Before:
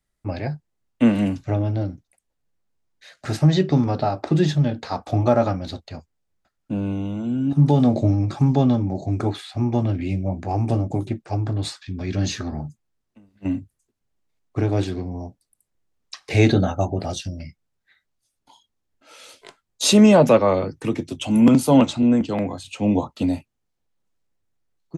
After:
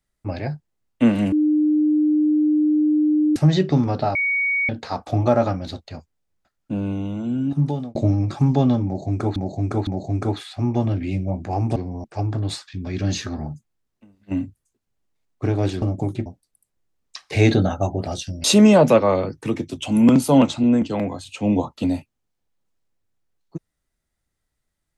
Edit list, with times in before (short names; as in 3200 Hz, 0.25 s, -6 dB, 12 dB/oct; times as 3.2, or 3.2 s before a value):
1.32–3.36 bleep 303 Hz -14.5 dBFS
4.15–4.69 bleep 2240 Hz -18 dBFS
7.4–7.95 fade out
8.85–9.36 loop, 3 plays
10.74–11.18 swap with 14.96–15.24
17.42–19.83 cut